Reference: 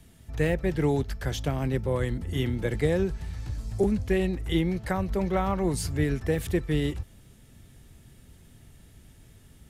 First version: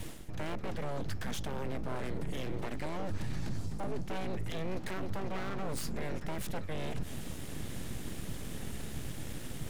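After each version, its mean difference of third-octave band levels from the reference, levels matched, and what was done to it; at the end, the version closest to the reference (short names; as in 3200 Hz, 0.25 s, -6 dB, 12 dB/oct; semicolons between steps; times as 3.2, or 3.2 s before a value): 13.0 dB: high shelf 10000 Hz -3.5 dB; reverse; compressor 16:1, threshold -39 dBFS, peak gain reduction 21 dB; reverse; full-wave rectifier; limiter -40.5 dBFS, peak gain reduction 9.5 dB; gain +14.5 dB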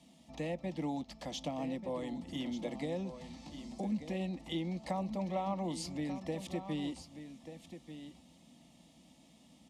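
6.5 dB: compressor 2.5:1, threshold -31 dBFS, peak gain reduction 8.5 dB; BPF 180–5700 Hz; fixed phaser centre 410 Hz, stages 6; echo 1.188 s -11 dB; gain +1 dB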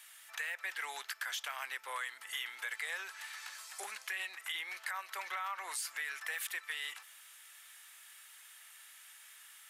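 19.5 dB: HPF 1200 Hz 24 dB/oct; bell 5100 Hz -4.5 dB 1.3 oct; limiter -31 dBFS, peak gain reduction 9 dB; compressor 2.5:1, threshold -48 dBFS, peak gain reduction 8 dB; gain +9 dB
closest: second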